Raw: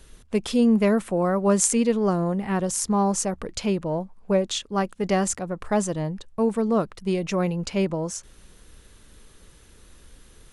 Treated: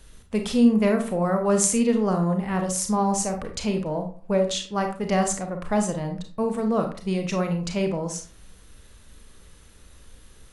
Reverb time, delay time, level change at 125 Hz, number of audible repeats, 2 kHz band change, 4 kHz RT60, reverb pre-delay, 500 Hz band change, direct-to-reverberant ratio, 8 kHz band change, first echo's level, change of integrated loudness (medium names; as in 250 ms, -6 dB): 0.45 s, no echo, +0.5 dB, no echo, 0.0 dB, 0.30 s, 29 ms, -0.5 dB, 4.5 dB, 0.0 dB, no echo, 0.0 dB